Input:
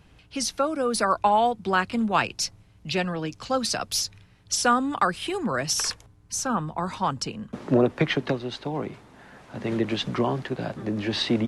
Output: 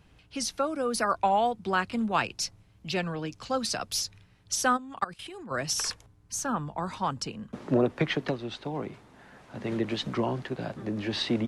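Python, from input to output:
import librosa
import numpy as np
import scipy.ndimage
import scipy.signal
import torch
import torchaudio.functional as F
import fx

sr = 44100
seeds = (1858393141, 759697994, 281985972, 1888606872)

y = fx.level_steps(x, sr, step_db=19, at=(4.77, 5.5), fade=0.02)
y = fx.record_warp(y, sr, rpm=33.33, depth_cents=100.0)
y = y * 10.0 ** (-4.0 / 20.0)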